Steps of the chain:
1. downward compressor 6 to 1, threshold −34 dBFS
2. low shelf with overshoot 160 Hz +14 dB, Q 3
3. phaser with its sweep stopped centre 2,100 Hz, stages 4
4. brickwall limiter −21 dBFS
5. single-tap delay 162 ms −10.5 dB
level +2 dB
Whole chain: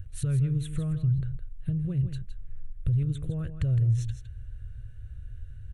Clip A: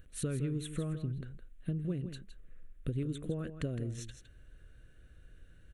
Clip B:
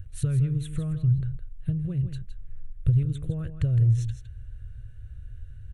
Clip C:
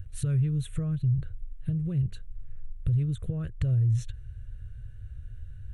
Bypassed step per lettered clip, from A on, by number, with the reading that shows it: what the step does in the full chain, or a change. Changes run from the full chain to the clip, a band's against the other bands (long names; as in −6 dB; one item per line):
2, change in crest factor +4.5 dB
4, change in crest factor +3.0 dB
5, change in crest factor −2.0 dB